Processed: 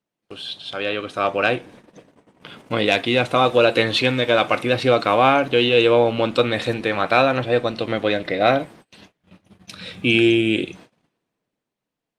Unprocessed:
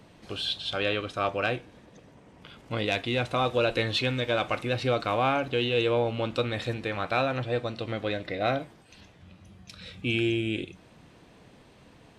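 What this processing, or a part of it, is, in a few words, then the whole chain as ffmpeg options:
video call: -af "highpass=160,dynaudnorm=framelen=110:gausssize=21:maxgain=13dB,agate=range=-28dB:threshold=-42dB:ratio=16:detection=peak" -ar 48000 -c:a libopus -b:a 32k

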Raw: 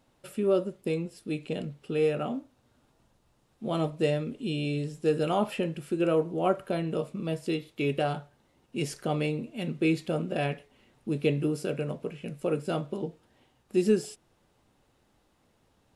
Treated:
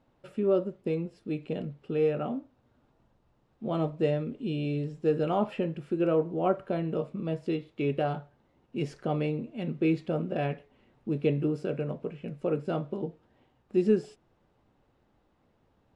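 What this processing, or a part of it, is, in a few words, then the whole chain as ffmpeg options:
through cloth: -af "lowpass=6700,highshelf=frequency=2900:gain=-13"

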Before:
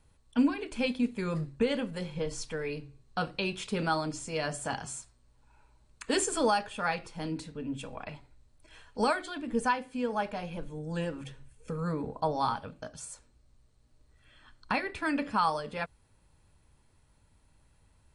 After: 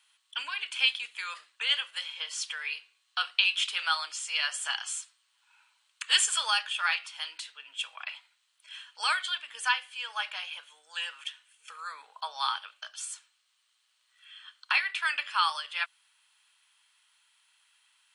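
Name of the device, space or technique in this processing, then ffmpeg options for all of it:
headphones lying on a table: -af "highpass=frequency=1200:width=0.5412,highpass=frequency=1200:width=1.3066,equalizer=frequency=3100:width_type=o:width=0.48:gain=11.5,volume=5dB"

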